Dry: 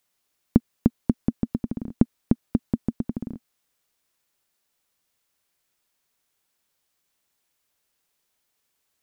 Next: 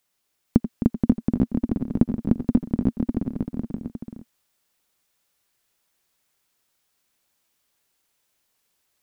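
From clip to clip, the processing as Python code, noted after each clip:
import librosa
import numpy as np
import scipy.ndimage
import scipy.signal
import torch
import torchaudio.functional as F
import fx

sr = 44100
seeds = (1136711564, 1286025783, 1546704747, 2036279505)

y = fx.echo_multitap(x, sr, ms=(85, 90, 261, 477, 541, 857), db=(-15.0, -18.5, -10.0, -5.5, -6.5, -5.0))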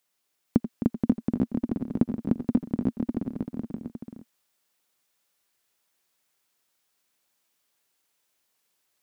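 y = fx.low_shelf(x, sr, hz=100.0, db=-12.0)
y = F.gain(torch.from_numpy(y), -2.0).numpy()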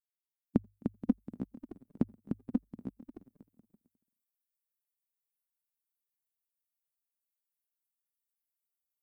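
y = fx.bin_expand(x, sr, power=3.0)
y = fx.hum_notches(y, sr, base_hz=50, count=2)
y = F.gain(torch.from_numpy(y), -2.5).numpy()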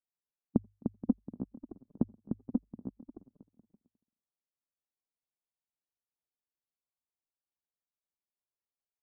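y = scipy.signal.sosfilt(scipy.signal.butter(4, 1100.0, 'lowpass', fs=sr, output='sos'), x)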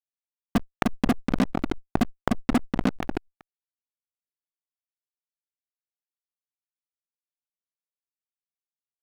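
y = fx.fuzz(x, sr, gain_db=48.0, gate_db=-43.0)
y = fx.pre_swell(y, sr, db_per_s=39.0)
y = F.gain(torch.from_numpy(y), -3.0).numpy()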